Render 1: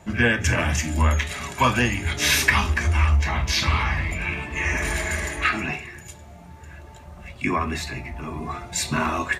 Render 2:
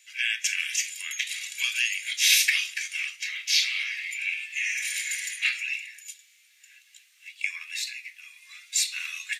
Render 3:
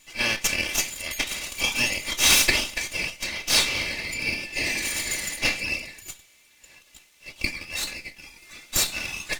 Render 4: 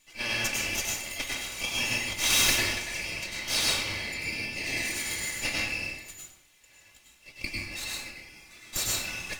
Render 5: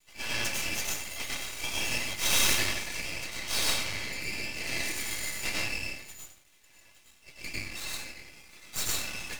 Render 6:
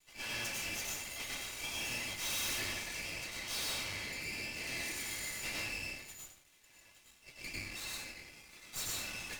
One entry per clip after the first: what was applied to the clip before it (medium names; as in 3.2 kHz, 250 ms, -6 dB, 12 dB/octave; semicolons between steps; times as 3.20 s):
steep high-pass 2.2 kHz 36 dB/octave; trim +2 dB
comb filter that takes the minimum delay 3.4 ms; trim +4 dB
plate-style reverb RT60 0.72 s, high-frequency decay 0.65×, pre-delay 85 ms, DRR -3 dB; trim -8.5 dB
half-wave rectifier; trim +2.5 dB
valve stage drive 22 dB, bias 0.65; trim +1 dB